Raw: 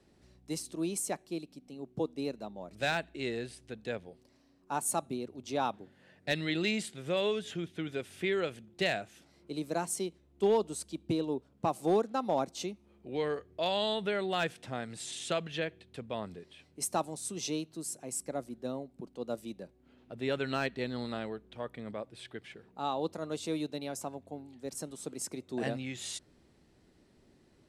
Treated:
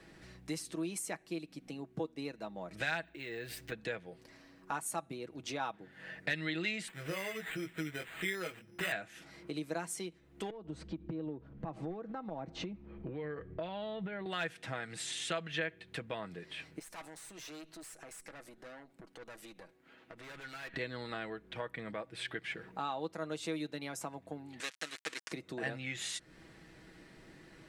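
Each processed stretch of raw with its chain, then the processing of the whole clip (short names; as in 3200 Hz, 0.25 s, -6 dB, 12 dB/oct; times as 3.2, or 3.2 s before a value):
3.04–3.72 careless resampling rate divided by 2×, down filtered, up hold + compressor 4:1, threshold -45 dBFS
6.88–8.92 chorus 1.4 Hz, delay 15 ms, depth 5.9 ms + careless resampling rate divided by 8×, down none, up hold
10.5–14.26 tilt -3.5 dB/oct + compressor 12:1, threshold -35 dBFS + LPF 4500 Hz
16.79–20.74 HPF 370 Hz 6 dB/oct + tube stage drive 44 dB, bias 0.7 + compressor, threshold -56 dBFS
24.6–25.32 switching dead time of 0.25 ms + weighting filter ITU-R 468 + upward compressor, threshold -45 dBFS
whole clip: compressor 3:1, threshold -49 dBFS; bell 1800 Hz +10 dB 1.3 oct; comb 6.2 ms, depth 47%; gain +6 dB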